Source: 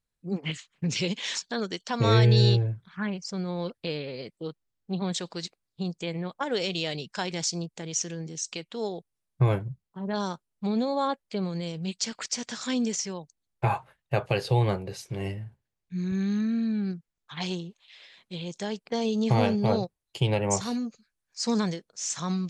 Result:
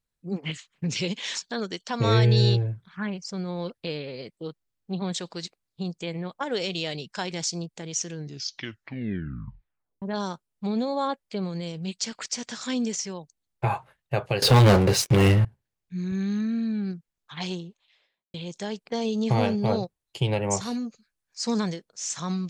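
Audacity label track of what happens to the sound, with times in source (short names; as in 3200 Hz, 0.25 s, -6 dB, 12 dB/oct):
8.100000	8.100000	tape stop 1.92 s
14.420000	15.450000	sample leveller passes 5
17.460000	18.340000	studio fade out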